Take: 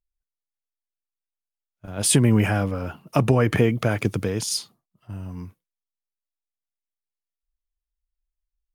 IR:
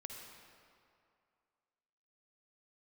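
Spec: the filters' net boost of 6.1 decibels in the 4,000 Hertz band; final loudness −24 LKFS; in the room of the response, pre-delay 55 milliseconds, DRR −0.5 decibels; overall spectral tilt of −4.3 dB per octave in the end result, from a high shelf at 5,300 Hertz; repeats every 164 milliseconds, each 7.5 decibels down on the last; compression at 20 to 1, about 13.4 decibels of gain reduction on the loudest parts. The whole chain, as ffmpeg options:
-filter_complex "[0:a]equalizer=frequency=4000:width_type=o:gain=6.5,highshelf=frequency=5300:gain=3,acompressor=threshold=-26dB:ratio=20,aecho=1:1:164|328|492|656|820:0.422|0.177|0.0744|0.0312|0.0131,asplit=2[link_01][link_02];[1:a]atrim=start_sample=2205,adelay=55[link_03];[link_02][link_03]afir=irnorm=-1:irlink=0,volume=4dB[link_04];[link_01][link_04]amix=inputs=2:normalize=0,volume=4dB"

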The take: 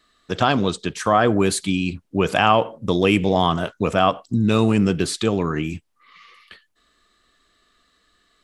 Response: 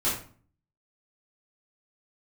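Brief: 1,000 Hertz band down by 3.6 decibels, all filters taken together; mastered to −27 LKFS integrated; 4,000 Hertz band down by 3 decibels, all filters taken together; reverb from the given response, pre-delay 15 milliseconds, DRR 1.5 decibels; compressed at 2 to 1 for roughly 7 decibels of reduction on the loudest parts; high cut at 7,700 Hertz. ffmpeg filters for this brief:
-filter_complex "[0:a]lowpass=7700,equalizer=frequency=1000:width_type=o:gain=-5,equalizer=frequency=4000:width_type=o:gain=-3.5,acompressor=threshold=-26dB:ratio=2,asplit=2[link_01][link_02];[1:a]atrim=start_sample=2205,adelay=15[link_03];[link_02][link_03]afir=irnorm=-1:irlink=0,volume=-11.5dB[link_04];[link_01][link_04]amix=inputs=2:normalize=0,volume=-3dB"

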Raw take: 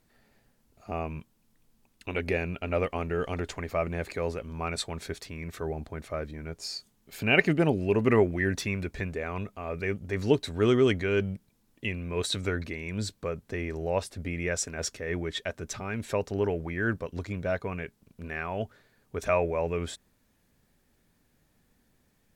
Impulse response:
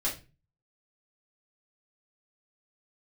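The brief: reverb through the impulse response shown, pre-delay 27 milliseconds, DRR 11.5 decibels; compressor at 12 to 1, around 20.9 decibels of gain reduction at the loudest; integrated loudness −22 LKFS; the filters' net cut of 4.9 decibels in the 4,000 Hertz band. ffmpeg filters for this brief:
-filter_complex "[0:a]equalizer=frequency=4000:width_type=o:gain=-6.5,acompressor=threshold=-39dB:ratio=12,asplit=2[link_01][link_02];[1:a]atrim=start_sample=2205,adelay=27[link_03];[link_02][link_03]afir=irnorm=-1:irlink=0,volume=-17.5dB[link_04];[link_01][link_04]amix=inputs=2:normalize=0,volume=22dB"

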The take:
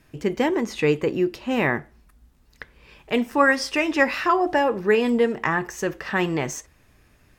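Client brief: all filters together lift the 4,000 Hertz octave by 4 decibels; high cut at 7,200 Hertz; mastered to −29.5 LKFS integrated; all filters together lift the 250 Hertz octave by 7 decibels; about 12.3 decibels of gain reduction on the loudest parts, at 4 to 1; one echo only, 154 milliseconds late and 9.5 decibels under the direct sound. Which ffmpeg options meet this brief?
ffmpeg -i in.wav -af "lowpass=7200,equalizer=frequency=250:width_type=o:gain=8.5,equalizer=frequency=4000:width_type=o:gain=6.5,acompressor=threshold=-26dB:ratio=4,aecho=1:1:154:0.335,volume=-1dB" out.wav

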